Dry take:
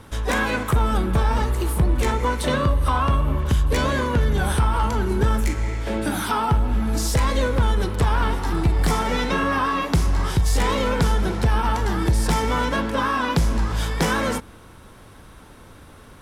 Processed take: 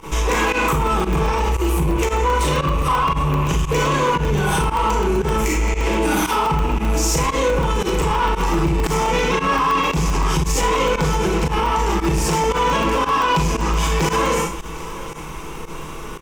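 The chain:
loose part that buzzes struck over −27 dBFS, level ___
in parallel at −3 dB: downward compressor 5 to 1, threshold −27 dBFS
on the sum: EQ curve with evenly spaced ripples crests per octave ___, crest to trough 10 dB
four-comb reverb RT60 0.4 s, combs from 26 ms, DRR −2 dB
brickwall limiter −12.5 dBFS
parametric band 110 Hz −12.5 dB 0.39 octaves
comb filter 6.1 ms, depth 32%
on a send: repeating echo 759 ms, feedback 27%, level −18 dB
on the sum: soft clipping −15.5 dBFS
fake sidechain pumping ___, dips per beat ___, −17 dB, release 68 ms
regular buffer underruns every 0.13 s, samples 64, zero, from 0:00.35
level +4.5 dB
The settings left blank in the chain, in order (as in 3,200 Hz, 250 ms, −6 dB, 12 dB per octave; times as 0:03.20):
−34 dBFS, 0.74, 115 BPM, 1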